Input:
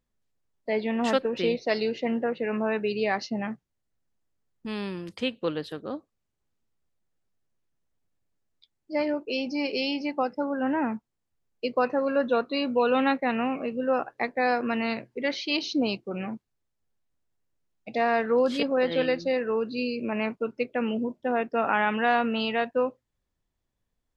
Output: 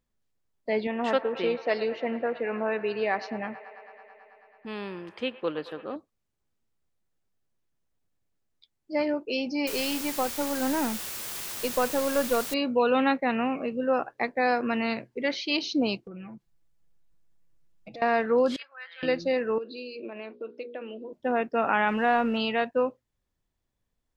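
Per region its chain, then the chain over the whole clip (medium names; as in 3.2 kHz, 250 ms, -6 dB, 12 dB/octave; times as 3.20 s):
0.87–5.96 s: tone controls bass -9 dB, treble -12 dB + feedback echo behind a band-pass 109 ms, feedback 83%, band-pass 1.2 kHz, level -14 dB
9.67–12.54 s: partial rectifier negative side -3 dB + word length cut 6-bit, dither triangular
16.07–18.02 s: bass shelf 150 Hz +10 dB + comb 6 ms, depth 100% + compression 5:1, threshold -41 dBFS
18.56–19.03 s: ladder high-pass 1.3 kHz, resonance 40% + treble shelf 2.5 kHz -10 dB
19.58–21.13 s: hum notches 60/120/180/240/300/360/420/480/540 Hz + compression 2.5:1, threshold -37 dBFS + cabinet simulation 320–4700 Hz, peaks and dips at 350 Hz +8 dB, 550 Hz +3 dB, 890 Hz -5 dB, 1.3 kHz -4 dB, 2.1 kHz -5 dB, 3.8 kHz +6 dB
21.88–22.37 s: companding laws mixed up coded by mu + low-pass 2.1 kHz 6 dB/octave
whole clip: none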